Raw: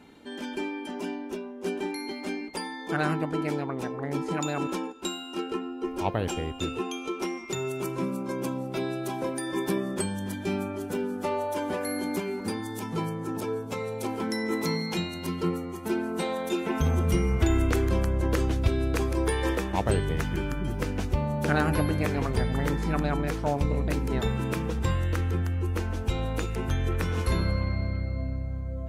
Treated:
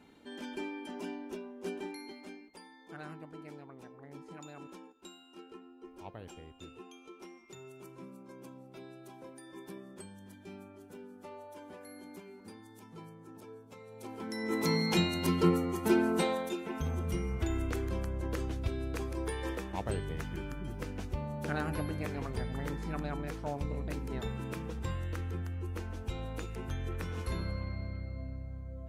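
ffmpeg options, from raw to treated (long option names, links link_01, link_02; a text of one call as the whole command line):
ffmpeg -i in.wav -af "volume=14dB,afade=type=out:start_time=1.58:duration=0.89:silence=0.251189,afade=type=in:start_time=13.86:duration=0.47:silence=0.334965,afade=type=in:start_time=14.33:duration=0.67:silence=0.266073,afade=type=out:start_time=16.08:duration=0.49:silence=0.251189" out.wav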